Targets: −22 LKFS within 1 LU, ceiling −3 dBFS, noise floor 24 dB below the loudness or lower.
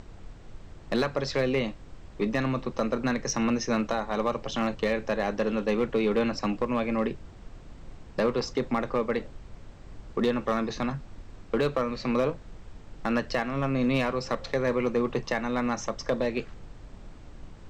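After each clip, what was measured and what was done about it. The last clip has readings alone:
share of clipped samples 0.6%; peaks flattened at −18.0 dBFS; background noise floor −47 dBFS; target noise floor −53 dBFS; integrated loudness −28.5 LKFS; sample peak −18.0 dBFS; target loudness −22.0 LKFS
→ clipped peaks rebuilt −18 dBFS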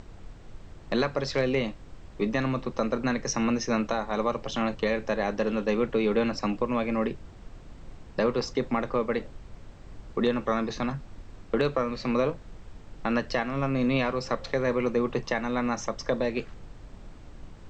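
share of clipped samples 0.0%; background noise floor −47 dBFS; target noise floor −53 dBFS
→ noise reduction from a noise print 6 dB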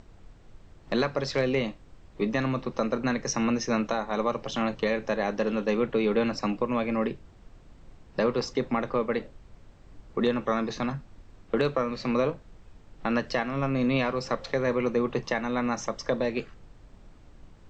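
background noise floor −53 dBFS; integrated loudness −28.5 LKFS; sample peak −10.0 dBFS; target loudness −22.0 LKFS
→ level +6.5 dB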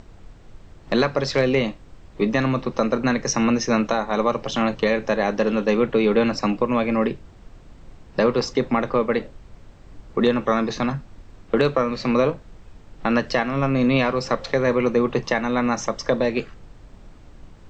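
integrated loudness −22.0 LKFS; sample peak −3.5 dBFS; background noise floor −47 dBFS

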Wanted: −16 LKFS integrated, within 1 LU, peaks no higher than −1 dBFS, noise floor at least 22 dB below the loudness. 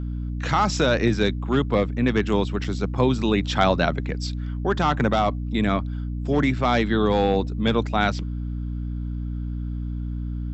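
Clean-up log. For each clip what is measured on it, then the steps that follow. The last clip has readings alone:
number of dropouts 1; longest dropout 4.3 ms; mains hum 60 Hz; hum harmonics up to 300 Hz; level of the hum −26 dBFS; integrated loudness −23.5 LKFS; sample peak −4.5 dBFS; target loudness −16.0 LKFS
→ repair the gap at 0:02.64, 4.3 ms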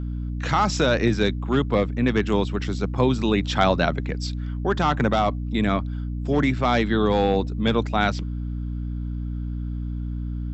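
number of dropouts 0; mains hum 60 Hz; hum harmonics up to 300 Hz; level of the hum −26 dBFS
→ mains-hum notches 60/120/180/240/300 Hz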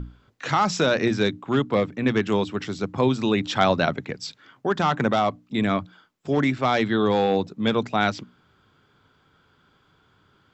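mains hum none found; integrated loudness −23.5 LKFS; sample peak −5.0 dBFS; target loudness −16.0 LKFS
→ level +7.5 dB
brickwall limiter −1 dBFS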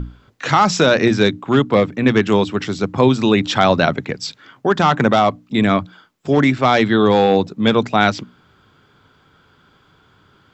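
integrated loudness −16.0 LKFS; sample peak −1.0 dBFS; background noise floor −55 dBFS

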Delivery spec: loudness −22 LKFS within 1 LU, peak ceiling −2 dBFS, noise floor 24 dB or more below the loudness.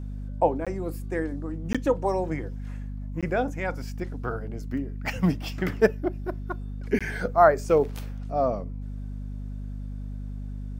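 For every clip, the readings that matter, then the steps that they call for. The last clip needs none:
number of dropouts 4; longest dropout 16 ms; mains hum 50 Hz; hum harmonics up to 250 Hz; level of the hum −32 dBFS; integrated loudness −28.0 LKFS; sample peak −4.0 dBFS; target loudness −22.0 LKFS
→ repair the gap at 0:00.65/0:01.73/0:03.21/0:06.99, 16 ms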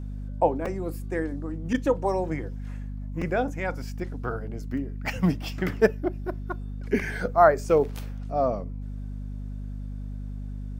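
number of dropouts 0; mains hum 50 Hz; hum harmonics up to 250 Hz; level of the hum −32 dBFS
→ hum removal 50 Hz, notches 5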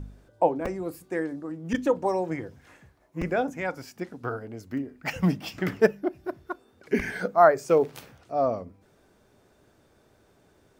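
mains hum none found; integrated loudness −27.0 LKFS; sample peak −4.5 dBFS; target loudness −22.0 LKFS
→ level +5 dB
brickwall limiter −2 dBFS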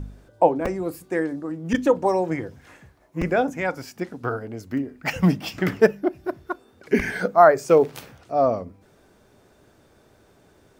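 integrated loudness −22.5 LKFS; sample peak −2.0 dBFS; background noise floor −57 dBFS

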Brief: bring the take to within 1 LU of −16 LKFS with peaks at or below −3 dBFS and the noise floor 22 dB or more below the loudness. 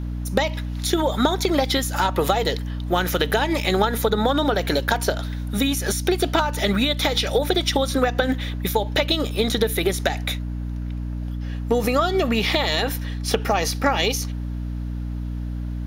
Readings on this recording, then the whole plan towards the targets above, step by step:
mains hum 60 Hz; hum harmonics up to 300 Hz; level of the hum −25 dBFS; integrated loudness −22.5 LKFS; sample peak −5.0 dBFS; target loudness −16.0 LKFS
→ hum removal 60 Hz, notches 5
level +6.5 dB
brickwall limiter −3 dBFS

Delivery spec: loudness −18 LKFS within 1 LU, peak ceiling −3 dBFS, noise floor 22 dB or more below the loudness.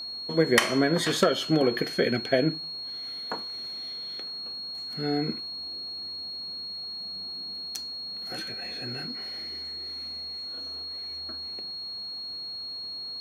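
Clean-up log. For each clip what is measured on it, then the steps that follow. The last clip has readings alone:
interfering tone 4,300 Hz; level of the tone −34 dBFS; integrated loudness −29.5 LKFS; sample peak −7.5 dBFS; target loudness −18.0 LKFS
→ notch filter 4,300 Hz, Q 30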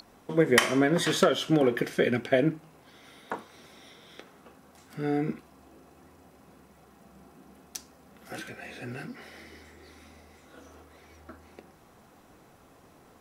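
interfering tone none found; integrated loudness −27.0 LKFS; sample peak −7.5 dBFS; target loudness −18.0 LKFS
→ level +9 dB
brickwall limiter −3 dBFS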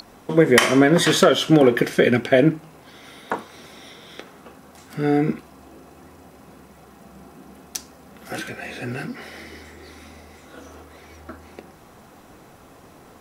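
integrated loudness −18.5 LKFS; sample peak −3.0 dBFS; background noise floor −48 dBFS

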